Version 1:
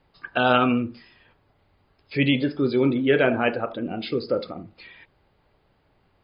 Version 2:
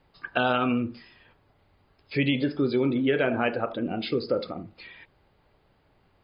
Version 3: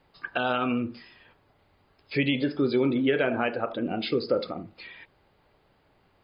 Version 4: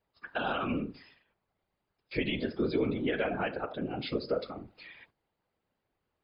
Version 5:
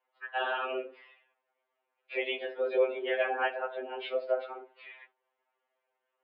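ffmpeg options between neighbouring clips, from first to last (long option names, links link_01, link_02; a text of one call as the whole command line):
ffmpeg -i in.wav -af "acompressor=threshold=-20dB:ratio=6" out.wav
ffmpeg -i in.wav -af "lowshelf=frequency=150:gain=-5.5,alimiter=limit=-14.5dB:level=0:latency=1:release=417,volume=1.5dB" out.wav
ffmpeg -i in.wav -af "afftfilt=real='hypot(re,im)*cos(2*PI*random(0))':imag='hypot(re,im)*sin(2*PI*random(1))':win_size=512:overlap=0.75,agate=range=-12dB:threshold=-59dB:ratio=16:detection=peak" out.wav
ffmpeg -i in.wav -af "highpass=frequency=330:width_type=q:width=0.5412,highpass=frequency=330:width_type=q:width=1.307,lowpass=frequency=3100:width_type=q:width=0.5176,lowpass=frequency=3100:width_type=q:width=0.7071,lowpass=frequency=3100:width_type=q:width=1.932,afreqshift=79,afftfilt=real='re*2.45*eq(mod(b,6),0)':imag='im*2.45*eq(mod(b,6),0)':win_size=2048:overlap=0.75,volume=4.5dB" out.wav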